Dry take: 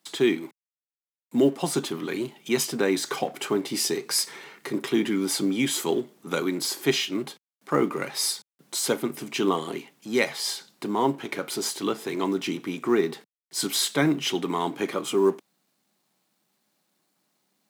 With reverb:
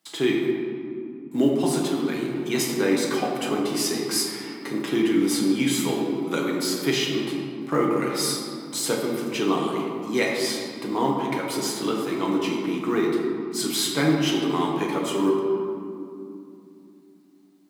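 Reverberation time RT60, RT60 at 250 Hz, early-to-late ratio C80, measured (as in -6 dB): 2.7 s, 4.2 s, 3.0 dB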